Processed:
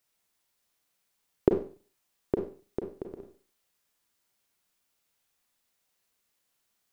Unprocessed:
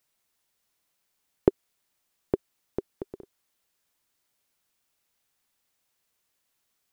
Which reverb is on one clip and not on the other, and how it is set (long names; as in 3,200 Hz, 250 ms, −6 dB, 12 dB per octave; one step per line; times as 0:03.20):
four-comb reverb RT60 0.4 s, combs from 32 ms, DRR 3.5 dB
level −2 dB